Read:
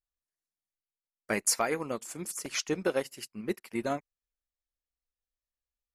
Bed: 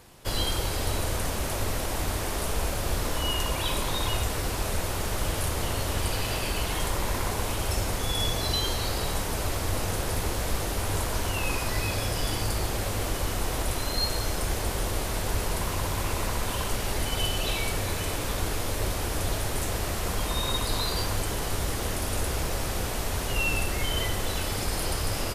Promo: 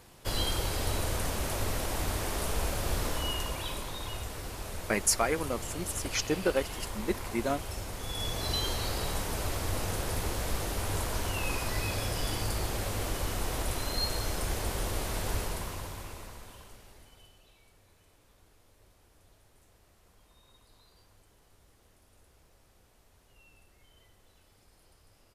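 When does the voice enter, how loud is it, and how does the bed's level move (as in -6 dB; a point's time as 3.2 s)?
3.60 s, +1.0 dB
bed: 3.05 s -3 dB
3.95 s -10.5 dB
7.92 s -10.5 dB
8.55 s -4 dB
15.35 s -4 dB
17.51 s -34 dB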